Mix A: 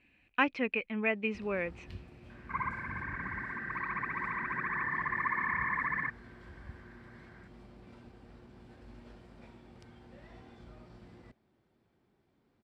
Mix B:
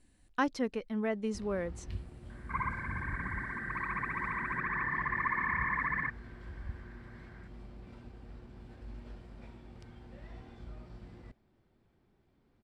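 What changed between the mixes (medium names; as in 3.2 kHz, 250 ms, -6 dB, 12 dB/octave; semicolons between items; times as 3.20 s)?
speech: remove resonant low-pass 2.5 kHz, resonance Q 13; master: remove high-pass 140 Hz 6 dB/octave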